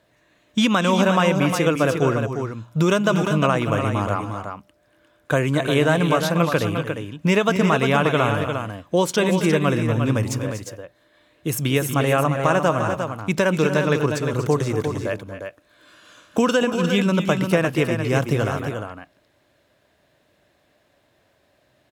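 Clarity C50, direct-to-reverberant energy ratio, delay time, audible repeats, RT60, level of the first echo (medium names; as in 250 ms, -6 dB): no reverb, no reverb, 236 ms, 2, no reverb, -12.0 dB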